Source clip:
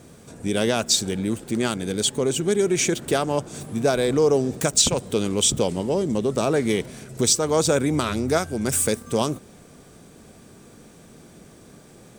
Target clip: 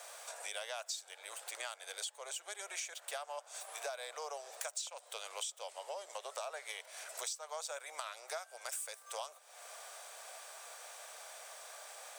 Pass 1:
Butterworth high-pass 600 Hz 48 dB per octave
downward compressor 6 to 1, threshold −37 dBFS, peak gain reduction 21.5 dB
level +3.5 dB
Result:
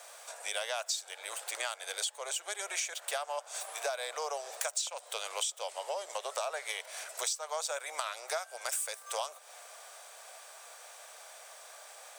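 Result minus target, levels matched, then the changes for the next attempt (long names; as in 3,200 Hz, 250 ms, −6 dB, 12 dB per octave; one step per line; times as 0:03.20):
downward compressor: peak gain reduction −7 dB
change: downward compressor 6 to 1, threshold −45.5 dBFS, peak gain reduction 28.5 dB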